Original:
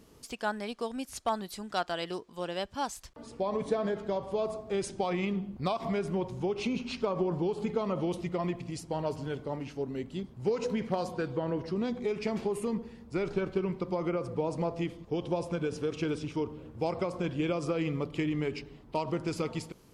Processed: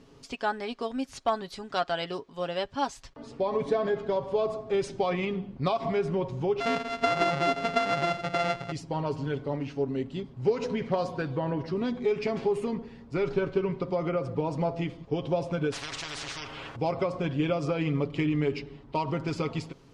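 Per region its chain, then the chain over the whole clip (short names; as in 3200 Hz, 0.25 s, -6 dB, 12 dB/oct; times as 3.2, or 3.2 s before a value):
6.6–8.72 sample sorter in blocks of 64 samples + LPF 2700 Hz 6 dB/oct + tilt shelf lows -3.5 dB, about 640 Hz
15.72–16.76 bell 200 Hz -11 dB 0.87 oct + spectral compressor 10:1
whole clip: LPF 5200 Hz 12 dB/oct; comb 7.3 ms, depth 49%; gain +2.5 dB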